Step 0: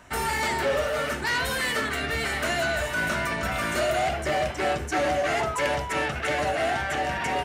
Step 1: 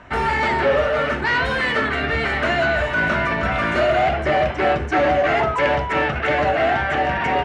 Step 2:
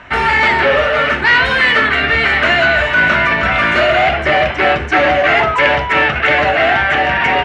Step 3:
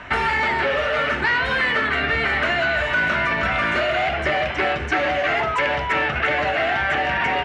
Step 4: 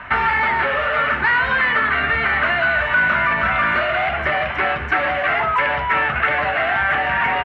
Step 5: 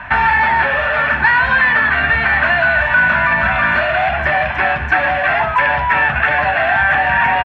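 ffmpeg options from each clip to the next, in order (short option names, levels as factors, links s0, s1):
-af "lowpass=2700,volume=2.37"
-af "equalizer=f=2500:t=o:w=2.2:g=9,volume=1.33"
-filter_complex "[0:a]acrossover=split=1700|4500[s0][s1][s2];[s0]acompressor=threshold=0.0794:ratio=4[s3];[s1]acompressor=threshold=0.0398:ratio=4[s4];[s2]acompressor=threshold=0.00631:ratio=4[s5];[s3][s4][s5]amix=inputs=3:normalize=0"
-af "firequalizer=gain_entry='entry(220,0);entry(310,-5);entry(1100,6);entry(6200,-15);entry(9200,-13)':delay=0.05:min_phase=1"
-af "aecho=1:1:1.2:0.51,volume=1.41"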